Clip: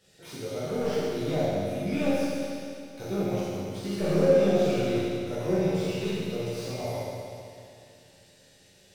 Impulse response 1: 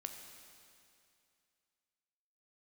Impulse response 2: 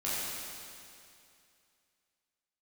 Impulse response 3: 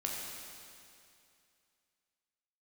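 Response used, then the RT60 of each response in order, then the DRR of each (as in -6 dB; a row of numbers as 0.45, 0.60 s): 2; 2.5, 2.5, 2.5 s; 4.5, -10.0, -2.5 dB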